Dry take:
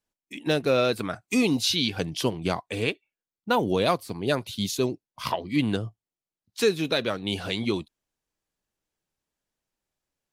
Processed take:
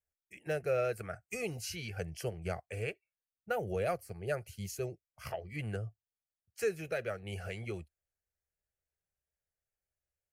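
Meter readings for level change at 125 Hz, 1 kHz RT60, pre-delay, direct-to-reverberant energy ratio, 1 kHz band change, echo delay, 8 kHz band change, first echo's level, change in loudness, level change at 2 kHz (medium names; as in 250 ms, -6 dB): -8.0 dB, no reverb, no reverb, no reverb, -12.5 dB, no echo, -11.0 dB, no echo, -12.0 dB, -10.0 dB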